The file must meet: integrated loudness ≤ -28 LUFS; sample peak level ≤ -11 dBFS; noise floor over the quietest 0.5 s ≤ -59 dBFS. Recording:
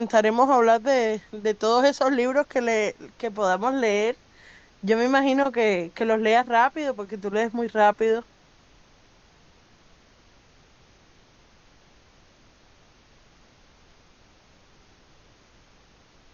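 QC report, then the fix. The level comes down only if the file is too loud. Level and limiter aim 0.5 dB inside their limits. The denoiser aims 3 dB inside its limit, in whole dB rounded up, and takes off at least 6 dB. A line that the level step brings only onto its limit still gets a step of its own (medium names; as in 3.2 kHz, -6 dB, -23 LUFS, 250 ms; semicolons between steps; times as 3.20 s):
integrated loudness -22.5 LUFS: fail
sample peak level -5.5 dBFS: fail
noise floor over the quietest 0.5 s -56 dBFS: fail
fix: trim -6 dB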